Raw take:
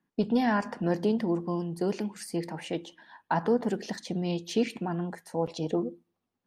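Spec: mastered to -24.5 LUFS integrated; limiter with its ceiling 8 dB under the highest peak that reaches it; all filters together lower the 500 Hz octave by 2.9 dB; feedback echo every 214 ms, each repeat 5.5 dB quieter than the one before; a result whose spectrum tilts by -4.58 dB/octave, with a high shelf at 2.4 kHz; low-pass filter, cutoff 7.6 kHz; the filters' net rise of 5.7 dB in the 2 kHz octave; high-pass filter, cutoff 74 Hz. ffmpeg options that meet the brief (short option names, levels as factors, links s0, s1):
-af "highpass=74,lowpass=7600,equalizer=f=500:t=o:g=-4,equalizer=f=2000:t=o:g=6,highshelf=f=2400:g=3.5,alimiter=limit=0.0891:level=0:latency=1,aecho=1:1:214|428|642|856|1070|1284|1498:0.531|0.281|0.149|0.079|0.0419|0.0222|0.0118,volume=2.37"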